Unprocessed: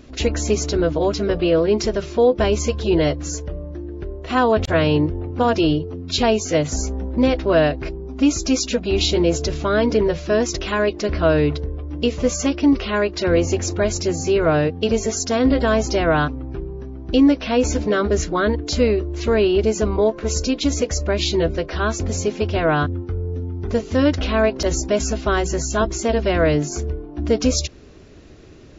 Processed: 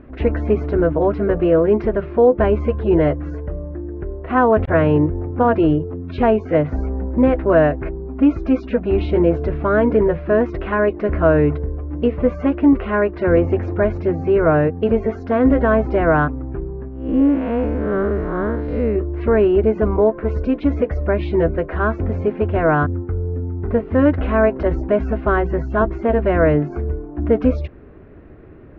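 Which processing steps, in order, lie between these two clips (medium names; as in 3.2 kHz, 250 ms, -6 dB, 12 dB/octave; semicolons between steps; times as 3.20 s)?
16.88–18.96 s: spectral blur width 197 ms; low-pass 1.9 kHz 24 dB/octave; trim +2.5 dB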